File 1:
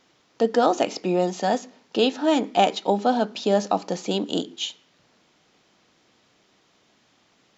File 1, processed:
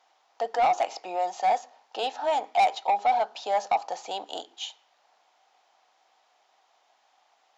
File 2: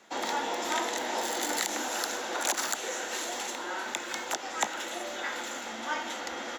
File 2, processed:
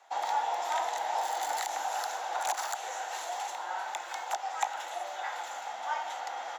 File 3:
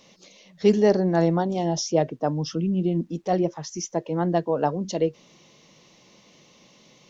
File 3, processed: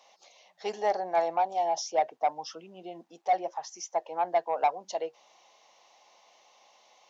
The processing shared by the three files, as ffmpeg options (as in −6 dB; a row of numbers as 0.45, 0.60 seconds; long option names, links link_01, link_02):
-af "highpass=frequency=770:width_type=q:width=4.9,asoftclip=type=tanh:threshold=-10dB,volume=-7dB"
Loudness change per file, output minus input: −4.0, −2.0, −6.0 LU